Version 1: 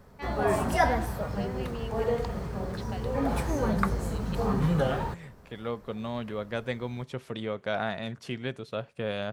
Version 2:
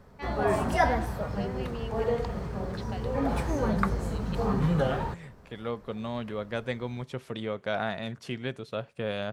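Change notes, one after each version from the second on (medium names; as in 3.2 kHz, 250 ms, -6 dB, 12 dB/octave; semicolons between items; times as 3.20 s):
background: add treble shelf 8.8 kHz -8.5 dB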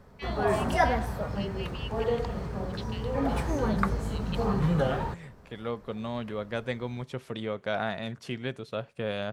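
first voice: add resonant high-pass 2.8 kHz, resonance Q 2.3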